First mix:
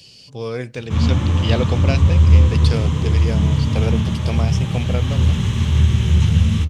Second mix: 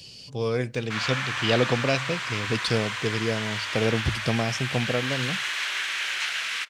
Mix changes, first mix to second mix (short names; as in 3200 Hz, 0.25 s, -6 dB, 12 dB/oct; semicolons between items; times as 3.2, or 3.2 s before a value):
background: add resonant high-pass 1500 Hz, resonance Q 3.3; reverb: off